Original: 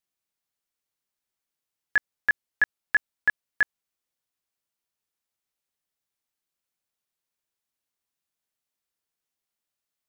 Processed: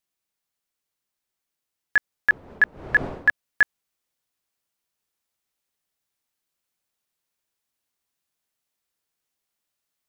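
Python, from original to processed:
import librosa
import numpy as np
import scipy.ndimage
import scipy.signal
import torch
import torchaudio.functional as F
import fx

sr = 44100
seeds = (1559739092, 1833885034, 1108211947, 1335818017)

y = fx.dmg_wind(x, sr, seeds[0], corner_hz=550.0, level_db=-40.0, at=(2.3, 3.29), fade=0.02)
y = fx.rider(y, sr, range_db=10, speed_s=0.5)
y = y * 10.0 ** (4.0 / 20.0)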